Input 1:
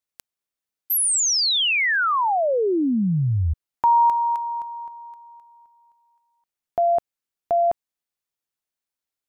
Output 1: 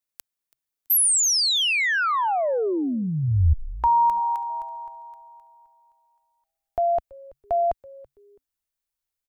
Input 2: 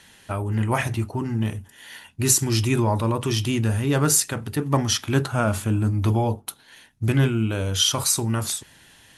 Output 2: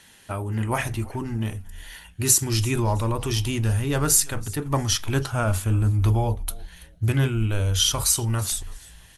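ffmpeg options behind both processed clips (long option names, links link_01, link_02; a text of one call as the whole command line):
ffmpeg -i in.wav -filter_complex "[0:a]crystalizer=i=0.5:c=0,asplit=3[link_01][link_02][link_03];[link_02]adelay=330,afreqshift=-140,volume=-22dB[link_04];[link_03]adelay=660,afreqshift=-280,volume=-32.2dB[link_05];[link_01][link_04][link_05]amix=inputs=3:normalize=0,asubboost=boost=7:cutoff=68,volume=-2dB" out.wav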